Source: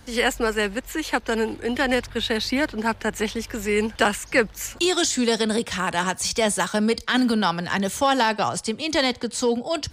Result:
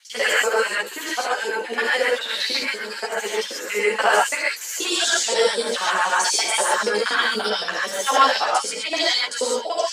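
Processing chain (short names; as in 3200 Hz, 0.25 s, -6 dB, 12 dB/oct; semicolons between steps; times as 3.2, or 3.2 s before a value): local time reversal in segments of 48 ms; LFO high-pass sine 3.9 Hz 460–5800 Hz; non-linear reverb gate 0.16 s rising, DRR -5 dB; ensemble effect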